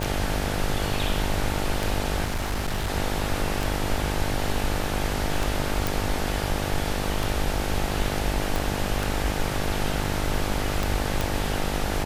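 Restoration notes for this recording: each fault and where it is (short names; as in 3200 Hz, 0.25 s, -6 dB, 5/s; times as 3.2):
buzz 50 Hz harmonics 18 -30 dBFS
tick 33 1/3 rpm
2.24–2.9 clipped -22.5 dBFS
5.87 pop
8.56 pop
11.21 pop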